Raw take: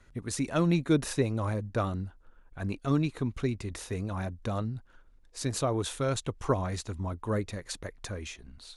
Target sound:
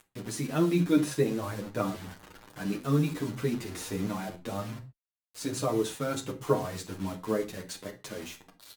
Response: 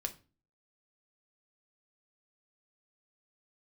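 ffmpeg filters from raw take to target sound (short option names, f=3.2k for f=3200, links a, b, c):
-filter_complex "[0:a]asettb=1/sr,asplit=3[a][b][c];[a]atrim=end=1.924[d];[b]atrim=start=1.92:end=4.2,asetpts=PTS-STARTPTS,afade=t=in:d=0.004:c=qsin,afade=t=out:st=2.276:d=0.004:c=qsin,aeval=exprs='val(0)+0.5*0.0112*sgn(val(0))':c=same[e];[c]atrim=start=4.196[f];[d][e]acrossfade=d=0.004:c1=hsin:c2=qsin[g];[g][f]acrossfade=d=0.004:c1=qsin:c2=hsin,highpass=170,equalizer=f=220:w=0.7:g=5,acompressor=mode=upward:threshold=-45dB:ratio=2.5,acrusher=bits=6:mix=0:aa=0.000001[h];[1:a]atrim=start_sample=2205,afade=t=out:st=0.16:d=0.01,atrim=end_sample=7497,asetrate=36162,aresample=44100[i];[h][i]afir=irnorm=-1:irlink=0,asplit=2[j][k];[k]adelay=8.3,afreqshift=1.3[l];[j][l]amix=inputs=2:normalize=1"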